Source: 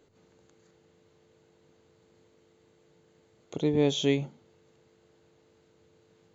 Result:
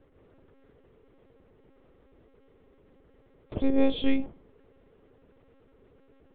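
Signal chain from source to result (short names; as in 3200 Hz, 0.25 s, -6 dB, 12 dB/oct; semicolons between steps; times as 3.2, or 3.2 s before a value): air absorption 380 m; dark delay 61 ms, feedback 40%, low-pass 1200 Hz, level -21.5 dB; on a send at -23 dB: reverb, pre-delay 3 ms; on the sum: monotone LPC vocoder at 8 kHz 270 Hz; gain +4.5 dB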